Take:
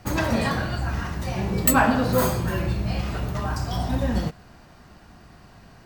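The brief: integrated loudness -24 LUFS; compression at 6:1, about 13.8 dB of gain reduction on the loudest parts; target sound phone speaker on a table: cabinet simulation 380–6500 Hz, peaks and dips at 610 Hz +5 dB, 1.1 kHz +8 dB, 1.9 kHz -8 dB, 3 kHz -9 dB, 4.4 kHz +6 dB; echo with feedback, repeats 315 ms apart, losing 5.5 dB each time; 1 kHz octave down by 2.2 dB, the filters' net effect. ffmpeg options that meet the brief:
-af "equalizer=f=1000:t=o:g=-7.5,acompressor=threshold=0.0316:ratio=6,highpass=f=380:w=0.5412,highpass=f=380:w=1.3066,equalizer=f=610:t=q:w=4:g=5,equalizer=f=1100:t=q:w=4:g=8,equalizer=f=1900:t=q:w=4:g=-8,equalizer=f=3000:t=q:w=4:g=-9,equalizer=f=4400:t=q:w=4:g=6,lowpass=f=6500:w=0.5412,lowpass=f=6500:w=1.3066,aecho=1:1:315|630|945|1260|1575|1890|2205:0.531|0.281|0.149|0.079|0.0419|0.0222|0.0118,volume=5.01"

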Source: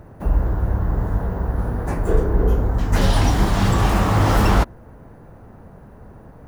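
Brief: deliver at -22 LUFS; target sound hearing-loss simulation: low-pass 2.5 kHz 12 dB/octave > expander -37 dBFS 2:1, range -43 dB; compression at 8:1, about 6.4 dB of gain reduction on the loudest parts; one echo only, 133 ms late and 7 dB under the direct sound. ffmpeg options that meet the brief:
-af "acompressor=threshold=0.126:ratio=8,lowpass=2500,aecho=1:1:133:0.447,agate=range=0.00708:threshold=0.0141:ratio=2,volume=1.33"

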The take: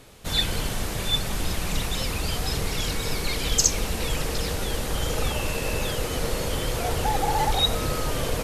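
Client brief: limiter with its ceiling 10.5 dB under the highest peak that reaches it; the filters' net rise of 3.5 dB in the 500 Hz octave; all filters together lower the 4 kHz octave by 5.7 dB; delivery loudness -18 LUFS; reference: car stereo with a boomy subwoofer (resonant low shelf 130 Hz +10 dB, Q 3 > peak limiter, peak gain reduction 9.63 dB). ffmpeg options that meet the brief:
-af "equalizer=f=500:t=o:g=5,equalizer=f=4000:t=o:g=-7,alimiter=limit=0.141:level=0:latency=1,lowshelf=f=130:t=q:w=3:g=10,volume=2.66,alimiter=limit=0.422:level=0:latency=1"

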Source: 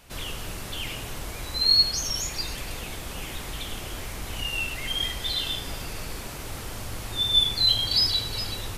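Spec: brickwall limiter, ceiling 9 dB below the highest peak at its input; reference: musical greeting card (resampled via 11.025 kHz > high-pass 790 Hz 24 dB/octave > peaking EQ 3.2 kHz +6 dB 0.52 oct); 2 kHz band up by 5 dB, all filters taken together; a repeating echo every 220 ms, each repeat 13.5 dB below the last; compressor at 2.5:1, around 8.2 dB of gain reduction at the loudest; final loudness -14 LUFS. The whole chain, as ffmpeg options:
-af "equalizer=f=2000:t=o:g=4,acompressor=threshold=0.0447:ratio=2.5,alimiter=level_in=1.26:limit=0.0631:level=0:latency=1,volume=0.794,aecho=1:1:220|440:0.211|0.0444,aresample=11025,aresample=44100,highpass=f=790:w=0.5412,highpass=f=790:w=1.3066,equalizer=f=3200:t=o:w=0.52:g=6,volume=7.5"

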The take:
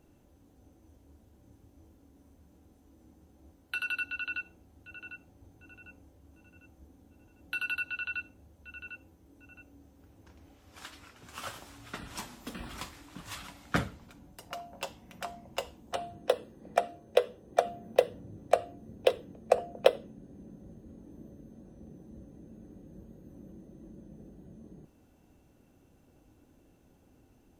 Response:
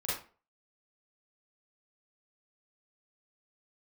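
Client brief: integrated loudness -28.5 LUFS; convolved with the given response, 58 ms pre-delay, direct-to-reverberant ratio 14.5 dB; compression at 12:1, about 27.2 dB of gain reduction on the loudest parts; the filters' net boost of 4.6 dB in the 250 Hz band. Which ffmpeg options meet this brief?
-filter_complex "[0:a]equalizer=f=250:t=o:g=6,acompressor=threshold=0.00501:ratio=12,asplit=2[s0][s1];[1:a]atrim=start_sample=2205,adelay=58[s2];[s1][s2]afir=irnorm=-1:irlink=0,volume=0.106[s3];[s0][s3]amix=inputs=2:normalize=0,volume=15.8"

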